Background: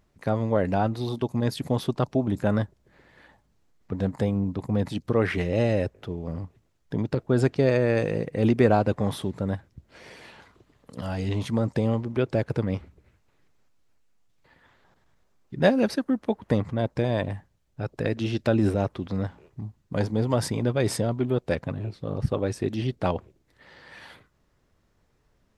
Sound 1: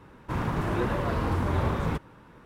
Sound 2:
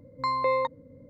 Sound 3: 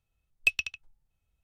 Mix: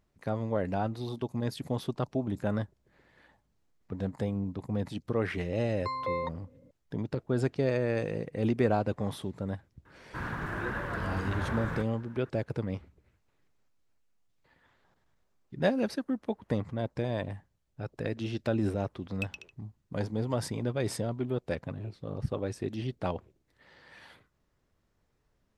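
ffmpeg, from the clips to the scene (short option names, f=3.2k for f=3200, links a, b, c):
-filter_complex "[0:a]volume=-7dB[a];[1:a]equalizer=f=1.6k:t=o:w=0.54:g=13[b];[2:a]atrim=end=1.09,asetpts=PTS-STARTPTS,volume=-7.5dB,afade=t=in:d=0.004:c=hsin,afade=t=out:st=1.086:d=0.004:c=hsin,adelay=5620[c];[b]atrim=end=2.45,asetpts=PTS-STARTPTS,volume=-9dB,afade=t=in:d=0.004:c=hsin,afade=t=out:st=2.446:d=0.004:c=hsin,adelay=9850[d];[3:a]atrim=end=1.43,asetpts=PTS-STARTPTS,volume=-13.5dB,afade=t=in:d=0.004:c=hsin,afade=t=out:st=1.426:d=0.004:c=hsin,adelay=18750[e];[a][c][d][e]amix=inputs=4:normalize=0"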